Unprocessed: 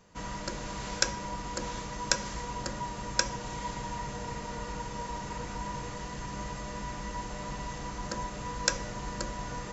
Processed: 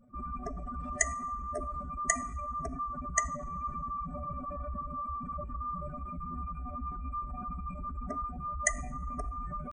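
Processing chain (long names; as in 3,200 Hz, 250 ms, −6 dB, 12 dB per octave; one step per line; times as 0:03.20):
expanding power law on the bin magnitudes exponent 3.1
coupled-rooms reverb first 0.6 s, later 2 s, from −22 dB, DRR 15.5 dB
pitch shifter +3.5 semitones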